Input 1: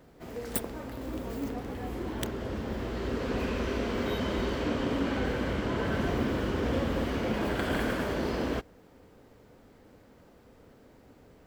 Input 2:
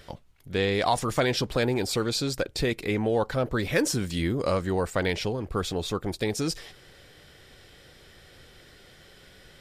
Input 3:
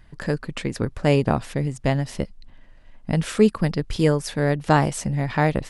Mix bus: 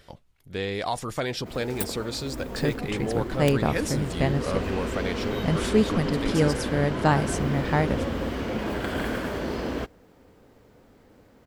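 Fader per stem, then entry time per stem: +1.0, -4.5, -3.5 dB; 1.25, 0.00, 2.35 s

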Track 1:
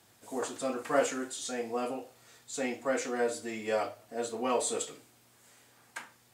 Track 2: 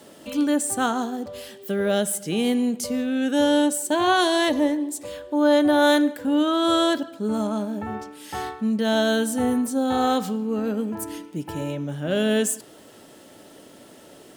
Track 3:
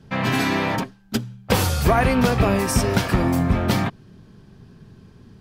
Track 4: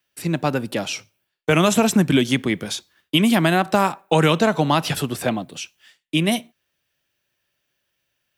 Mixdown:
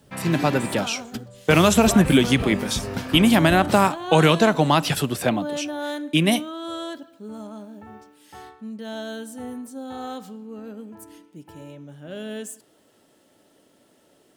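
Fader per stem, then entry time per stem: -17.5, -12.0, -10.0, +0.5 dB; 0.00, 0.00, 0.00, 0.00 s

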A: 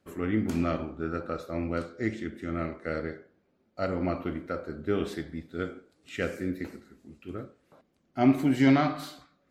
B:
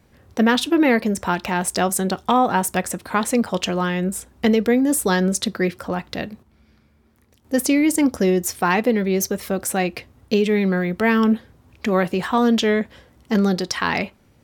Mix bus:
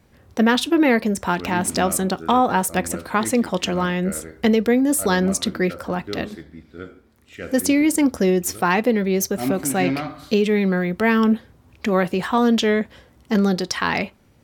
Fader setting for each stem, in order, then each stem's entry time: -3.0, 0.0 dB; 1.20, 0.00 s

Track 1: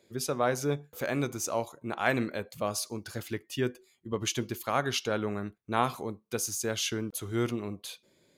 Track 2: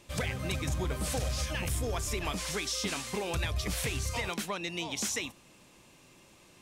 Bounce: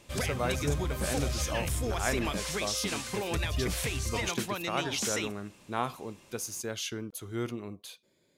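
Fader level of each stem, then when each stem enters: -4.5, +0.5 dB; 0.00, 0.00 s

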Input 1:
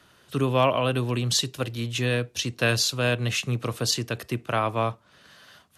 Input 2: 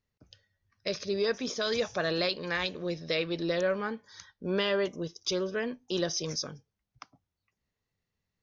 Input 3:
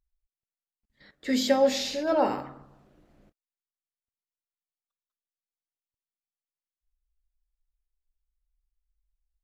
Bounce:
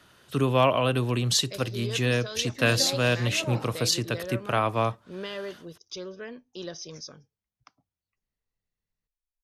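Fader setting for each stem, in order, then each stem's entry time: 0.0, -7.5, -11.5 dB; 0.00, 0.65, 1.30 s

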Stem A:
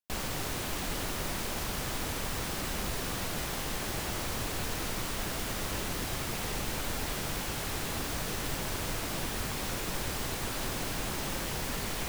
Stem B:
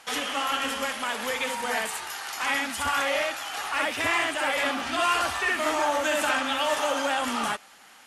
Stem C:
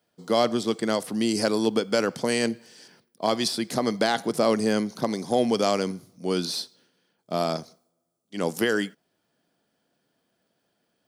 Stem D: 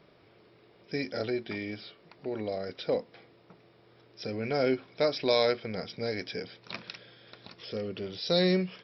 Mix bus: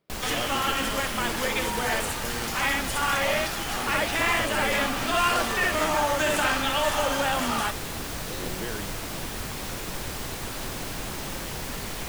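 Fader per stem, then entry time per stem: +1.0, +0.5, -13.0, -16.5 dB; 0.00, 0.15, 0.00, 0.00 s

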